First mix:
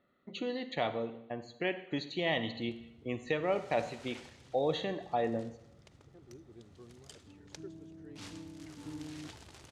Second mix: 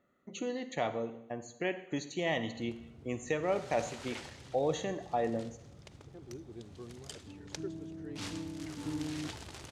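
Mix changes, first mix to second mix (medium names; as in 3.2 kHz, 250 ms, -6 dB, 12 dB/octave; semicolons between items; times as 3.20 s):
speech: add resonant high shelf 5.1 kHz +8 dB, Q 3; background +6.5 dB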